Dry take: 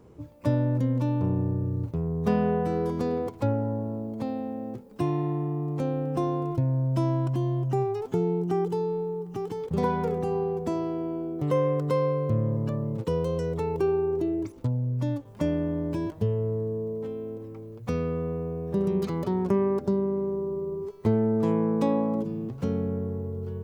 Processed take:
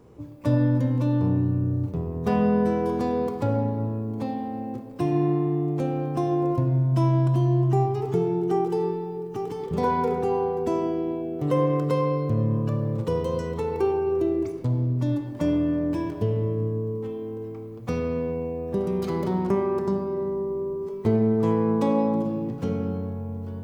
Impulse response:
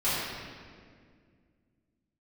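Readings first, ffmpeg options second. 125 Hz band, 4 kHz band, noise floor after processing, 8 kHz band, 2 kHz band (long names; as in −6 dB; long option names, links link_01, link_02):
+3.0 dB, +2.5 dB, −36 dBFS, can't be measured, +3.0 dB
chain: -filter_complex "[0:a]asplit=2[link_01][link_02];[1:a]atrim=start_sample=2205,lowshelf=frequency=120:gain=-10[link_03];[link_02][link_03]afir=irnorm=-1:irlink=0,volume=-14dB[link_04];[link_01][link_04]amix=inputs=2:normalize=0"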